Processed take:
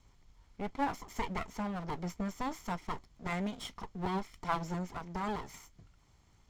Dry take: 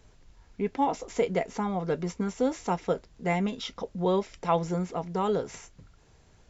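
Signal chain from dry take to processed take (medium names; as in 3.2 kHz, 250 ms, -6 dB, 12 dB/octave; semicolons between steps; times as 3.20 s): comb filter that takes the minimum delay 0.93 ms; trim -5.5 dB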